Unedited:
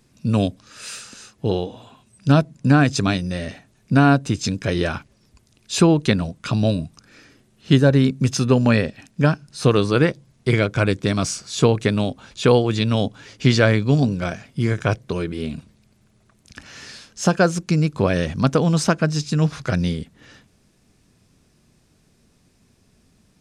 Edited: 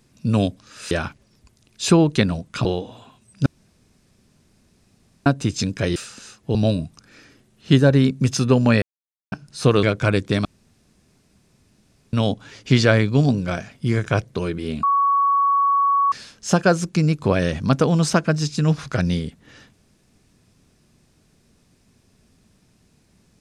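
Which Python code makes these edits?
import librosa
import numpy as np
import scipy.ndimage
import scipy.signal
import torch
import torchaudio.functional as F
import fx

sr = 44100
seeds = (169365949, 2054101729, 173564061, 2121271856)

y = fx.edit(x, sr, fx.swap(start_s=0.91, length_s=0.59, other_s=4.81, other_length_s=1.74),
    fx.room_tone_fill(start_s=2.31, length_s=1.8),
    fx.silence(start_s=8.82, length_s=0.5),
    fx.cut(start_s=9.83, length_s=0.74),
    fx.room_tone_fill(start_s=11.19, length_s=1.68),
    fx.bleep(start_s=15.57, length_s=1.29, hz=1120.0, db=-14.5), tone=tone)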